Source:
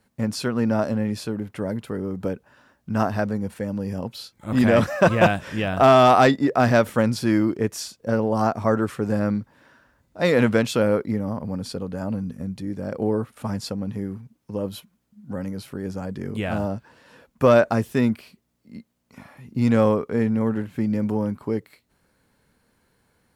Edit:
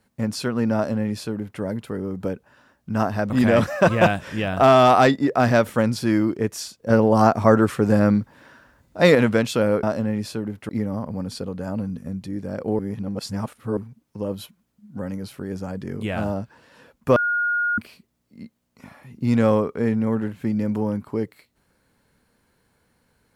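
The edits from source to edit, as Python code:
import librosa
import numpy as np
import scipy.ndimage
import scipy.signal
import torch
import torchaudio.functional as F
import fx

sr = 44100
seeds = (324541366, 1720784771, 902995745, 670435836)

y = fx.edit(x, sr, fx.duplicate(start_s=0.75, length_s=0.86, to_s=11.03),
    fx.cut(start_s=3.3, length_s=1.2),
    fx.clip_gain(start_s=8.1, length_s=2.25, db=5.5),
    fx.reverse_span(start_s=13.13, length_s=0.98),
    fx.bleep(start_s=17.5, length_s=0.62, hz=1430.0, db=-19.0), tone=tone)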